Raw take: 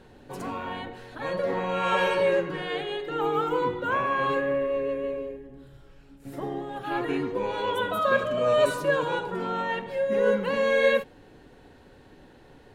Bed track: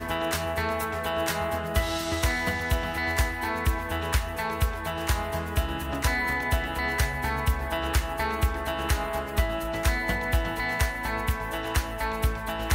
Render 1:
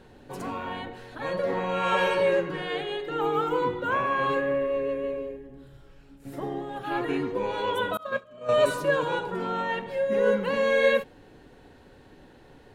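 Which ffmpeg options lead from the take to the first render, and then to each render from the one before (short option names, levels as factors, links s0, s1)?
-filter_complex "[0:a]asettb=1/sr,asplit=3[s0][s1][s2];[s0]atrim=end=7.974[s3];[s1]atrim=start=7.97:end=8.49,asetpts=PTS-STARTPTS,afade=t=in:d=0.004:c=qsin,afade=t=out:st=0.516:d=0.004:c=qsin,agate=range=0.0224:threshold=0.178:ratio=3:release=100:detection=peak[s4];[s2]atrim=start=8.486[s5];[s3][s4]acrossfade=d=0.004:c1=hsin:c2=qsin[s6];[s6][s5]acrossfade=d=0.004:c1=qsin:c2=hsin"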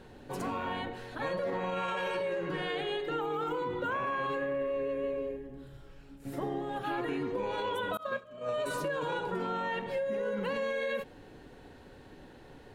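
-af "alimiter=limit=0.0841:level=0:latency=1:release=30,acompressor=threshold=0.0316:ratio=6"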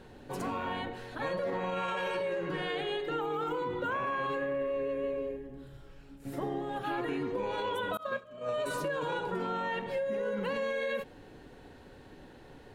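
-af anull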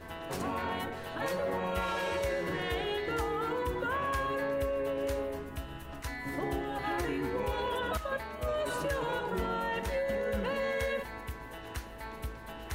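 -filter_complex "[1:a]volume=0.2[s0];[0:a][s0]amix=inputs=2:normalize=0"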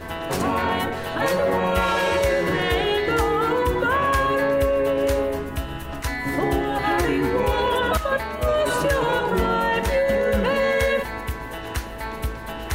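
-af "volume=3.98"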